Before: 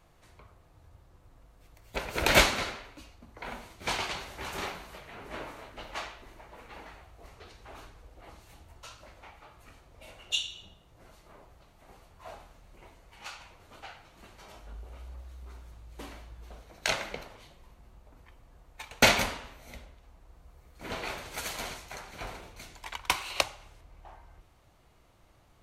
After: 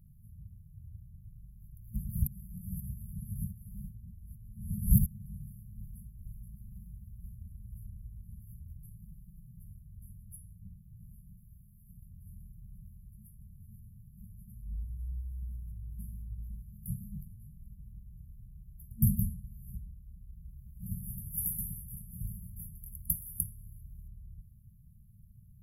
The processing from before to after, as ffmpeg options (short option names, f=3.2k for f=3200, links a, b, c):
-filter_complex "[0:a]asettb=1/sr,asplit=3[a][b][c];[a]atrim=end=5.694[d];[b]atrim=start=5.69:end=8.22,asetpts=PTS-STARTPTS,afade=t=in:d=0.004:c=qsin,afade=t=out:st=2.526:d=0.004:c=qsin,aecho=1:1:476:0.473,atrim=end_sample=111573[e];[c]atrim=start=8.216[f];[d][e]acrossfade=d=0.004:c1=hsin:c2=qsin[g];[g][f]acrossfade=d=0.004:c1=qsin:c2=hsin,asettb=1/sr,asplit=3[h][i][j];[h]atrim=end=8.784[k];[i]atrim=start=8.78:end=9.64,asetpts=PTS-STARTPTS,afade=t=in:d=0.004:c=qsin,afade=t=out:st=0.856:d=0.004:c=qsin,aecho=1:1:6:0.82,atrim=end_sample=37926[l];[j]atrim=start=9.636[m];[k][l]acrossfade=d=0.004:c1=hsin:c2=qsin[n];[n][m]acrossfade=d=0.004:c1=qsin:c2=hsin,asettb=1/sr,asplit=3[o][p][q];[o]atrim=end=11.374[r];[p]atrim=start=11.37:end=11.92,asetpts=PTS-STARTPTS,afade=t=in:d=0.004:c=qsin,afade=t=out:st=0.546:d=0.004:c=qsin,tiltshelf=f=970:g=-4[s];[q]atrim=start=11.916[t];[r][s]acrossfade=d=0.004:c1=hsin:c2=qsin[u];[u][t]acrossfade=d=0.004:c1=qsin:c2=hsin,asettb=1/sr,asplit=3[v][w][x];[v]atrim=end=20.864[y];[w]atrim=start=20.86:end=24.08,asetpts=PTS-STARTPTS,afade=t=in:d=0.004:c=qsin,afade=t=out:st=3.216:d=0.004:c=qsin,aemphasis=mode=production:type=cd[z];[x]atrim=start=24.076[aa];[y][z]acrossfade=d=0.004:c1=hsin:c2=qsin[ab];[ab][aa]acrossfade=d=0.004:c1=qsin:c2=hsin,asplit=3[ac][ad][ae];[ac]atrim=end=2.272[af];[ad]atrim=start=2.268:end=5.062,asetpts=PTS-STARTPTS,areverse[ag];[ae]atrim=start=5.058[ah];[af][ag]acrossfade=d=0.004:c1=hsin:c2=hsin[ai];[ai][ah]acrossfade=d=0.004:c1=hsin:c2=hsin,afftfilt=real='re*(1-between(b*sr/4096,220,10000))':imag='im*(1-between(b*sr/4096,220,10000))':win_size=4096:overlap=0.75,equalizer=f=120:t=o:w=1.2:g=6,acontrast=29"